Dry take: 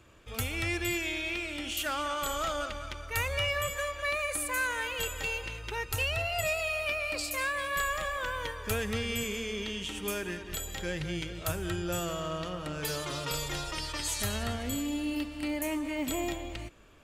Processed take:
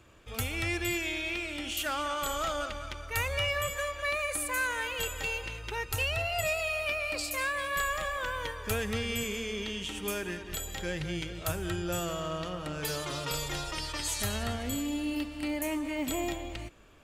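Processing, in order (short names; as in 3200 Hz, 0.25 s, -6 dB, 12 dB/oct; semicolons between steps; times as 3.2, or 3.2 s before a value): bell 770 Hz +2 dB 0.22 oct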